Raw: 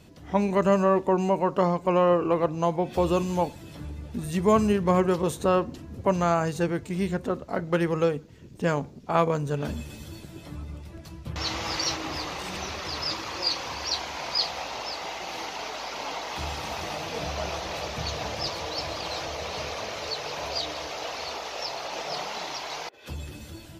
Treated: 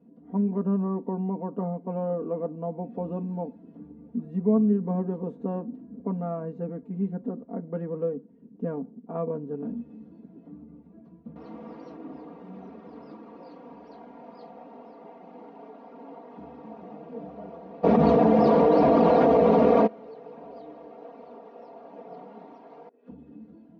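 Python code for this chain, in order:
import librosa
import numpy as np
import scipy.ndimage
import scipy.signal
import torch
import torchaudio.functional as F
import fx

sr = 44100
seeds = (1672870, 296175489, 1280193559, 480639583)

y = fx.ladder_bandpass(x, sr, hz=280.0, resonance_pct=40)
y = y + 0.91 * np.pad(y, (int(4.3 * sr / 1000.0), 0))[:len(y)]
y = fx.env_flatten(y, sr, amount_pct=100, at=(17.83, 19.86), fade=0.02)
y = y * 10.0 ** (5.5 / 20.0)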